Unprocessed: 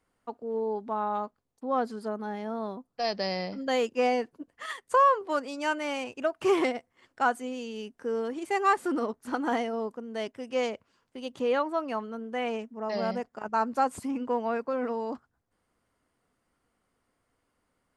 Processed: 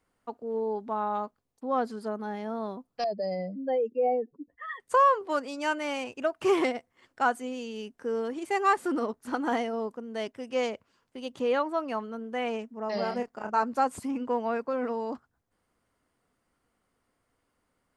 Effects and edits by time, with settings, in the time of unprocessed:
3.04–4.8 spectral contrast raised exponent 2.3
12.94–13.63 doubler 29 ms -6 dB

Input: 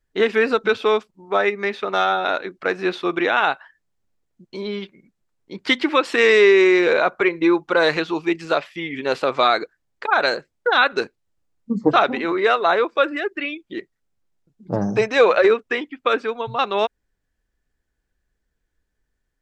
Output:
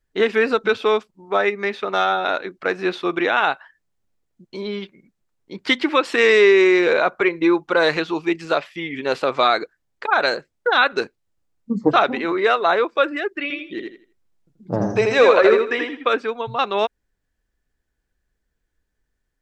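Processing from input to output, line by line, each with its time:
13.42–16.1 feedback echo 82 ms, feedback 26%, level -3.5 dB

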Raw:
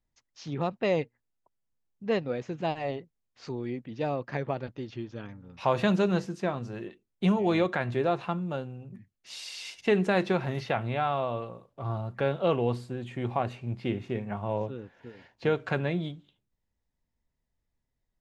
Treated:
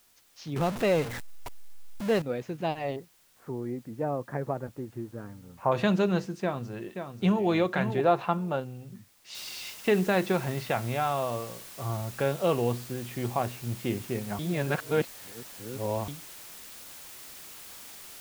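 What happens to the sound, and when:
0.56–2.22 zero-crossing step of -30 dBFS
2.96–5.72 LPF 1600 Hz 24 dB/oct
6.42–7.47 echo throw 0.53 s, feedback 10%, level -7.5 dB
8.03–8.6 bell 900 Hz +6 dB 2 oct
9.35 noise floor step -63 dB -46 dB
14.39–16.08 reverse

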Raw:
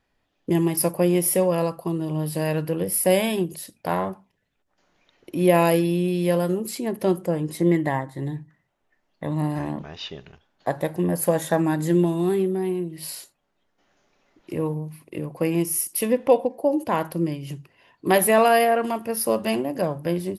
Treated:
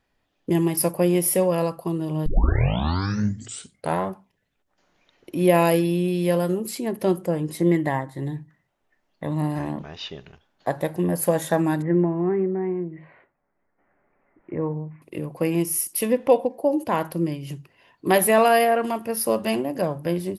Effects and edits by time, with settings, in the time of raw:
2.26 tape start 1.75 s
11.82–15.02 elliptic low-pass 2100 Hz, stop band 60 dB

